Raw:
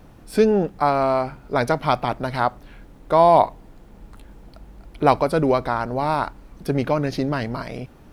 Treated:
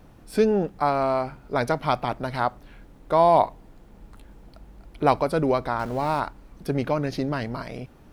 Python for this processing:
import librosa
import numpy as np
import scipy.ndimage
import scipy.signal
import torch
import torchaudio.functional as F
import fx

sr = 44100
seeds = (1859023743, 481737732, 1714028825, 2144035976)

y = fx.zero_step(x, sr, step_db=-35.0, at=(5.79, 6.2))
y = y * librosa.db_to_amplitude(-3.5)